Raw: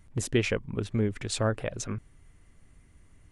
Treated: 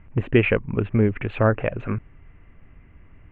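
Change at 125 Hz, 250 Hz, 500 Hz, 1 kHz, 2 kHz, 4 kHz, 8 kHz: +8.0 dB, +8.0 dB, +8.5 dB, +9.0 dB, +8.5 dB, -3.0 dB, under -40 dB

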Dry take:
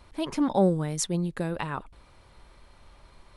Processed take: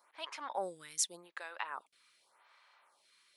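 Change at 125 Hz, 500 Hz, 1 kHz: -36.5 dB, -16.0 dB, -8.5 dB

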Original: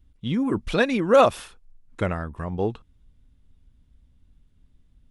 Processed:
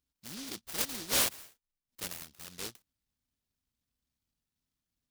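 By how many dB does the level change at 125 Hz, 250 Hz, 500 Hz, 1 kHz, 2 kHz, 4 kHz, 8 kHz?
-22.0 dB, -21.5 dB, -24.5 dB, -19.5 dB, -11.5 dB, -0.5 dB, +11.0 dB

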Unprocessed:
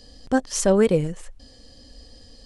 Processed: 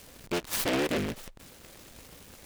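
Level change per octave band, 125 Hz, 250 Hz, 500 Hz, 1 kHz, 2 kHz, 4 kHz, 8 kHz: -11.5 dB, -9.5 dB, -12.0 dB, -6.5 dB, -1.5 dB, +0.5 dB, -8.0 dB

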